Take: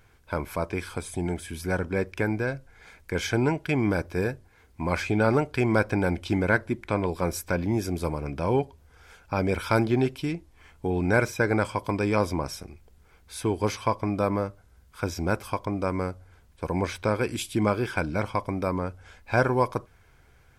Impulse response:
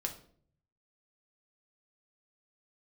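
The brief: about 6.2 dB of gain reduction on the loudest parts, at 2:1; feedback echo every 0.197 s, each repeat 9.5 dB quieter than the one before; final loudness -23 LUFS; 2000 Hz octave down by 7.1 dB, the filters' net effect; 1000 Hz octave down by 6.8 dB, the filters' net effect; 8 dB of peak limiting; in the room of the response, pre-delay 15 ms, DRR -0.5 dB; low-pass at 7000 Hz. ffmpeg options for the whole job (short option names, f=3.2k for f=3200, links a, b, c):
-filter_complex "[0:a]lowpass=7k,equalizer=f=1k:t=o:g=-7,equalizer=f=2k:t=o:g=-7,acompressor=threshold=-31dB:ratio=2,alimiter=limit=-24dB:level=0:latency=1,aecho=1:1:197|394|591|788:0.335|0.111|0.0365|0.012,asplit=2[a][b];[1:a]atrim=start_sample=2205,adelay=15[c];[b][c]afir=irnorm=-1:irlink=0,volume=-0.5dB[d];[a][d]amix=inputs=2:normalize=0,volume=9dB"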